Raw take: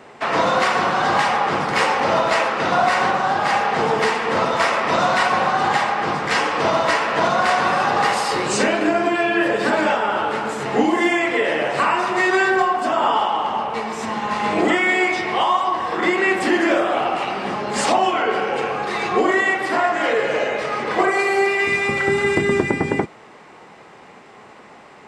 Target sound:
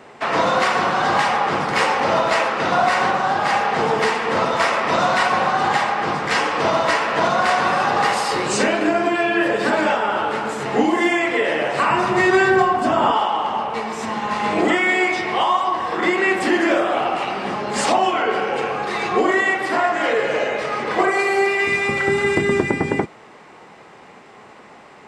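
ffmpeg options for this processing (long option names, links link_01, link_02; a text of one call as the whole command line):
ffmpeg -i in.wav -filter_complex "[0:a]asettb=1/sr,asplit=3[link_01][link_02][link_03];[link_01]atrim=end=11.904[link_04];[link_02]atrim=start=11.9:end=13.12,asetpts=PTS-STARTPTS,afade=type=in:duration=0.004:curve=qsin,afade=type=out:start_time=1.216:duration=0.004:curve=qsin,equalizer=frequency=99:width=0.52:gain=14.5[link_05];[link_03]atrim=start=13.116[link_06];[link_04][link_05]acrossfade=duration=0.004:curve1=hsin:curve2=qsin[link_07];[link_07][link_06]acrossfade=duration=0.004:curve1=qsin:curve2=hsin" out.wav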